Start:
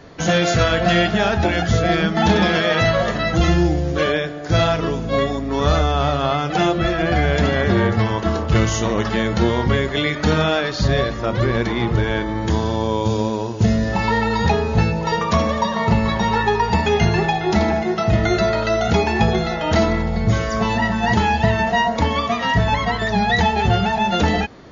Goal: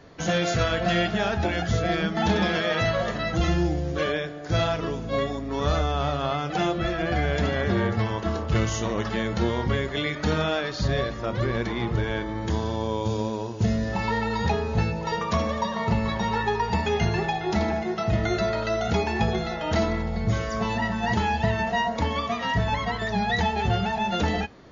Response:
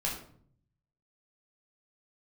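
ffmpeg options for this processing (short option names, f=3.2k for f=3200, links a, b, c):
-filter_complex "[0:a]asplit=2[a][b];[1:a]atrim=start_sample=2205,atrim=end_sample=3087[c];[b][c]afir=irnorm=-1:irlink=0,volume=-25.5dB[d];[a][d]amix=inputs=2:normalize=0,volume=-7.5dB"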